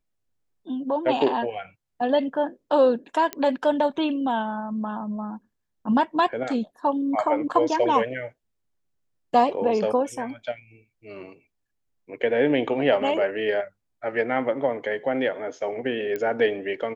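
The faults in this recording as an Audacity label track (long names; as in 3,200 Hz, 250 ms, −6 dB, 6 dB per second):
3.330000	3.330000	click −12 dBFS
16.160000	16.160000	click −17 dBFS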